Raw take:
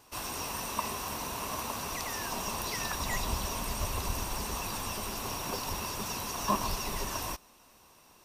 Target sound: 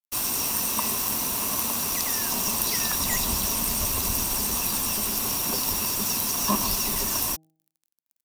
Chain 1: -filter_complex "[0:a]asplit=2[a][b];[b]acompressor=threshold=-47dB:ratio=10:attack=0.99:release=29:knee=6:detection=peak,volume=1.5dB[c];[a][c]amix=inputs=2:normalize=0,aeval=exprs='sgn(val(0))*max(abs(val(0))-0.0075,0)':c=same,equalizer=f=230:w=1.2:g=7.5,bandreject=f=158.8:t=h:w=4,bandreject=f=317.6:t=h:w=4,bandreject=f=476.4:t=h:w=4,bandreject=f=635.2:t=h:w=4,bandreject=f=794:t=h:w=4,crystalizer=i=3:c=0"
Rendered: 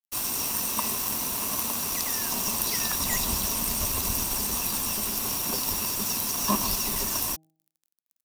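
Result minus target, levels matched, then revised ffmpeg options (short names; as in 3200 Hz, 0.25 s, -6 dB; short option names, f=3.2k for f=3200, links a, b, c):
compressor: peak gain reduction +7 dB
-filter_complex "[0:a]asplit=2[a][b];[b]acompressor=threshold=-39.5dB:ratio=10:attack=0.99:release=29:knee=6:detection=peak,volume=1.5dB[c];[a][c]amix=inputs=2:normalize=0,aeval=exprs='sgn(val(0))*max(abs(val(0))-0.0075,0)':c=same,equalizer=f=230:w=1.2:g=7.5,bandreject=f=158.8:t=h:w=4,bandreject=f=317.6:t=h:w=4,bandreject=f=476.4:t=h:w=4,bandreject=f=635.2:t=h:w=4,bandreject=f=794:t=h:w=4,crystalizer=i=3:c=0"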